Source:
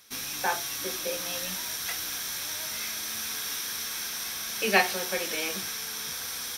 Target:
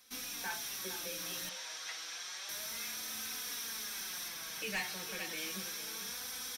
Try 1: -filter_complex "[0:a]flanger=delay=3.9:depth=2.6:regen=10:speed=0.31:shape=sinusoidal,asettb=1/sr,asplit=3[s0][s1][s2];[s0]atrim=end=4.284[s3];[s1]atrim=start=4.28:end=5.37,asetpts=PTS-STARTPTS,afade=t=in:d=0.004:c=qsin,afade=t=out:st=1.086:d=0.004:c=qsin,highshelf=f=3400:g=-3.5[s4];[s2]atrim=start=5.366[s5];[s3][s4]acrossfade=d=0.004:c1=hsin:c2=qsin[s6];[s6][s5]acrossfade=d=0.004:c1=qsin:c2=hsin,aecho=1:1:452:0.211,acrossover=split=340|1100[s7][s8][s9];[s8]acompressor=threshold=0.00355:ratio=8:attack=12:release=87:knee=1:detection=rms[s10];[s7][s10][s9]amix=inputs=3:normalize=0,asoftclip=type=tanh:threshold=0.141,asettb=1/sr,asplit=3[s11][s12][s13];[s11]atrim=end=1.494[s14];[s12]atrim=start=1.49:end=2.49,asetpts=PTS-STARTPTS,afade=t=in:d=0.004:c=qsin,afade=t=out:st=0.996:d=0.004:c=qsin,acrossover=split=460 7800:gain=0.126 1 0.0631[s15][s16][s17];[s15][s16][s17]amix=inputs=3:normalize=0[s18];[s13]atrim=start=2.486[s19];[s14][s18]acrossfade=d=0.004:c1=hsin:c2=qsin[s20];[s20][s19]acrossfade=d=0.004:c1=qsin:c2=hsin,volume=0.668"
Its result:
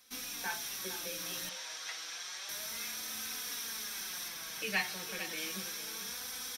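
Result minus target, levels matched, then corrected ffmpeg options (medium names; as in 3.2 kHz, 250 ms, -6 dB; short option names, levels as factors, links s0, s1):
saturation: distortion -13 dB
-filter_complex "[0:a]flanger=delay=3.9:depth=2.6:regen=10:speed=0.31:shape=sinusoidal,asettb=1/sr,asplit=3[s0][s1][s2];[s0]atrim=end=4.284[s3];[s1]atrim=start=4.28:end=5.37,asetpts=PTS-STARTPTS,afade=t=in:d=0.004:c=qsin,afade=t=out:st=1.086:d=0.004:c=qsin,highshelf=f=3400:g=-3.5[s4];[s2]atrim=start=5.366[s5];[s3][s4]acrossfade=d=0.004:c1=hsin:c2=qsin[s6];[s6][s5]acrossfade=d=0.004:c1=qsin:c2=hsin,aecho=1:1:452:0.211,acrossover=split=340|1100[s7][s8][s9];[s8]acompressor=threshold=0.00355:ratio=8:attack=12:release=87:knee=1:detection=rms[s10];[s7][s10][s9]amix=inputs=3:normalize=0,asoftclip=type=tanh:threshold=0.0376,asettb=1/sr,asplit=3[s11][s12][s13];[s11]atrim=end=1.494[s14];[s12]atrim=start=1.49:end=2.49,asetpts=PTS-STARTPTS,afade=t=in:d=0.004:c=qsin,afade=t=out:st=0.996:d=0.004:c=qsin,acrossover=split=460 7800:gain=0.126 1 0.0631[s15][s16][s17];[s15][s16][s17]amix=inputs=3:normalize=0[s18];[s13]atrim=start=2.486[s19];[s14][s18]acrossfade=d=0.004:c1=hsin:c2=qsin[s20];[s20][s19]acrossfade=d=0.004:c1=qsin:c2=hsin,volume=0.668"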